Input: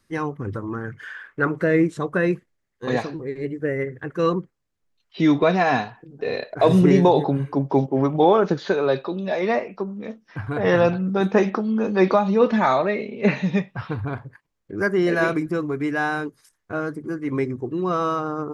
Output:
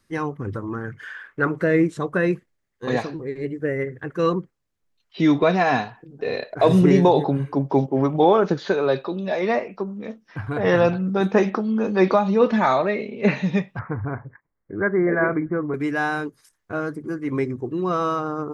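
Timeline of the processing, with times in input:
13.79–15.74 s: steep low-pass 2.2 kHz 96 dB/octave

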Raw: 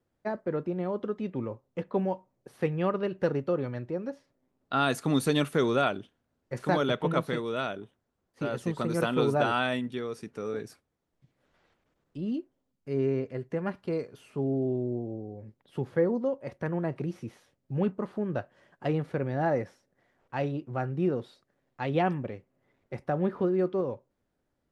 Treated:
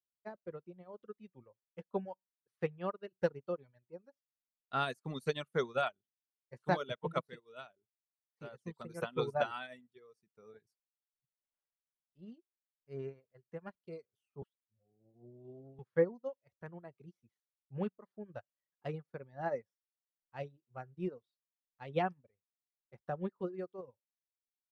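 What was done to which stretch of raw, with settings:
14.42–15.79 s: reverse
whole clip: reverb removal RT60 1.4 s; peaking EQ 290 Hz -10.5 dB 0.33 oct; upward expansion 2.5:1, over -43 dBFS; trim -1 dB

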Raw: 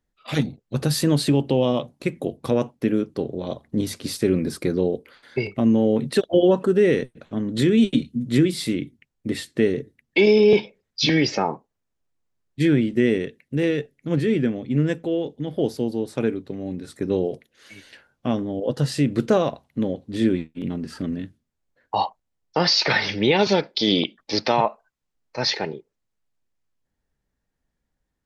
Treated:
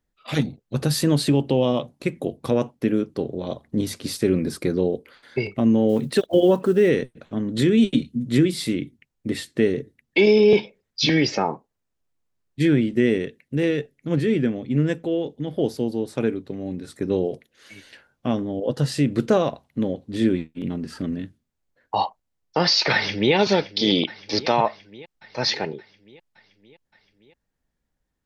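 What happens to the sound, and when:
5.89–6.89 s: block-companded coder 7-bit
22.93–23.34 s: echo throw 570 ms, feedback 65%, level -15.5 dB

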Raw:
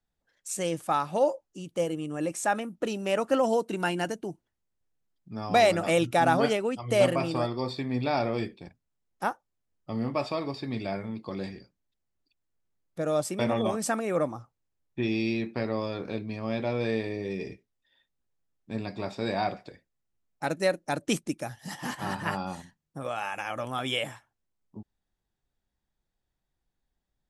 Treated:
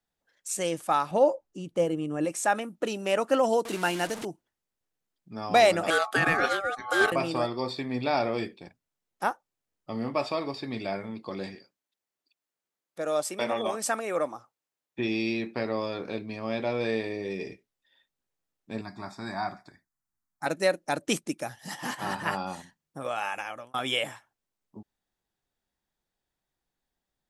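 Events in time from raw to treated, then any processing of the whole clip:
1.11–2.25 s: tilt EQ -2 dB/octave
3.65–4.25 s: one-bit delta coder 64 kbps, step -32.5 dBFS
5.90–7.12 s: ring modulator 980 Hz
11.55–14.99 s: high-pass 420 Hz 6 dB/octave
18.81–20.46 s: static phaser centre 1.2 kHz, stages 4
23.31–23.74 s: fade out
whole clip: bass shelf 160 Hz -11.5 dB; trim +2 dB

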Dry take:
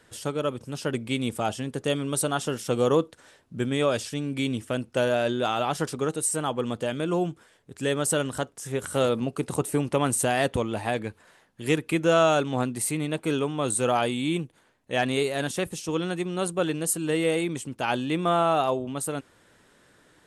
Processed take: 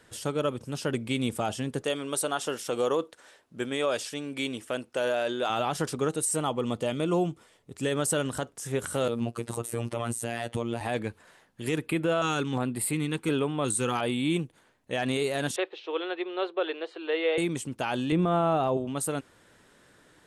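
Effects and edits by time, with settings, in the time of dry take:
1.83–5.50 s: tone controls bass -14 dB, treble -1 dB
6.36–7.86 s: band-stop 1.6 kHz, Q 5.5
9.08–10.81 s: robot voice 117 Hz
11.86–14.30 s: LFO notch square 1.4 Hz 640–6100 Hz
15.56–17.38 s: Chebyshev band-pass 370–3900 Hz, order 4
18.12–18.77 s: tilt EQ -2.5 dB/octave
whole clip: peak limiter -17 dBFS

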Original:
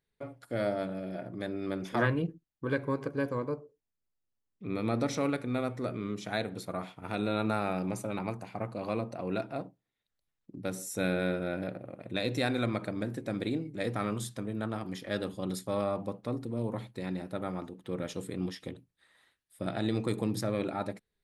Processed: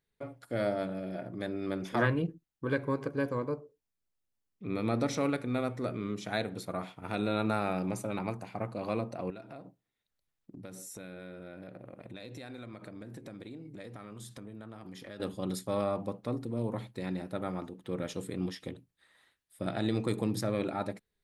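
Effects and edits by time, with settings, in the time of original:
9.30–15.20 s: compression, threshold -42 dBFS

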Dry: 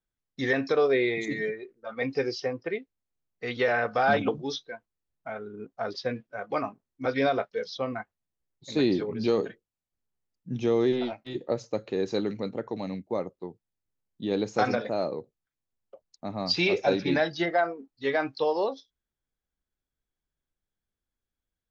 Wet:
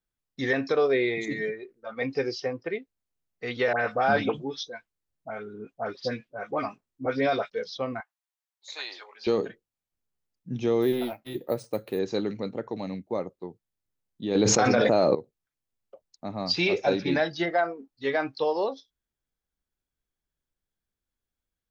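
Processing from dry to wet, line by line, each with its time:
3.73–7.50 s: phase dispersion highs, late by 82 ms, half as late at 2.2 kHz
8.00–9.27 s: high-pass 820 Hz 24 dB/octave
10.82–11.99 s: careless resampling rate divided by 3×, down none, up hold
14.35–15.15 s: level flattener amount 100%

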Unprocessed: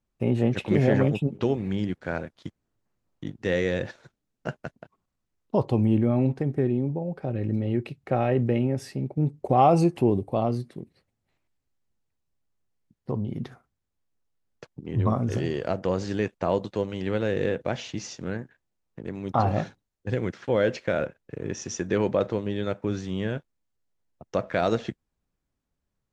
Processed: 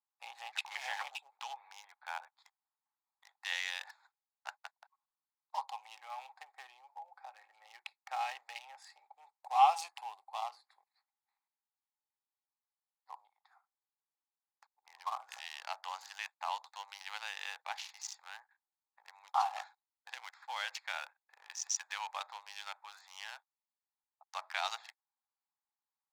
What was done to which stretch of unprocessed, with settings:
1.53–2.37 s: cabinet simulation 290–3600 Hz, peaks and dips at 460 Hz +5 dB, 890 Hz +3 dB, 1.9 kHz -5 dB
13.27–14.74 s: compression 4:1, threshold -46 dBFS
whole clip: local Wiener filter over 15 samples; Chebyshev high-pass 810 Hz, order 6; peaking EQ 1.4 kHz -12.5 dB 1.7 oct; trim +6 dB

